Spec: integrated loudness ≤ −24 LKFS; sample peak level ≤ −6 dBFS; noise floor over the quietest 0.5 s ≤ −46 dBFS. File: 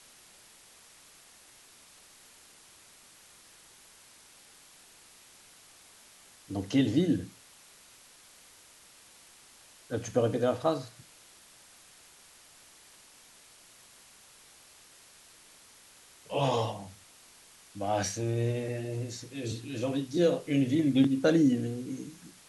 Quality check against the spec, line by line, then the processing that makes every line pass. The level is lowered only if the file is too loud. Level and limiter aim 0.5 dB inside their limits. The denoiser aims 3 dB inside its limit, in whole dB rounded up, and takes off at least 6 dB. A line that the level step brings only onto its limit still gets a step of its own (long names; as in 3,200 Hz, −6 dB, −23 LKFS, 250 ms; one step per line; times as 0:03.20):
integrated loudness −29.5 LKFS: in spec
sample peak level −12.0 dBFS: in spec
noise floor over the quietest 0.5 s −57 dBFS: in spec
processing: no processing needed